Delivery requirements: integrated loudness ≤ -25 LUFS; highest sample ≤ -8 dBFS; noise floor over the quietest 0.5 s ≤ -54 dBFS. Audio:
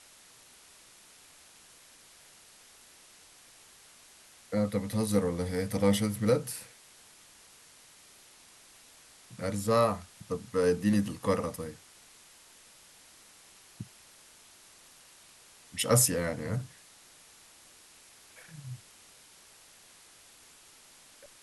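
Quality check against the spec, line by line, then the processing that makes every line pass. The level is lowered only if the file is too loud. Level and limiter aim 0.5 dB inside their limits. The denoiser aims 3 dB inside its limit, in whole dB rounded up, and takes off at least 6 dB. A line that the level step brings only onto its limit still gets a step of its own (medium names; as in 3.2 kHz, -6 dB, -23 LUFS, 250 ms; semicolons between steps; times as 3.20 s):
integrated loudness -29.5 LUFS: pass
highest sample -11.0 dBFS: pass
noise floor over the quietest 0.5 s -57 dBFS: pass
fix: none needed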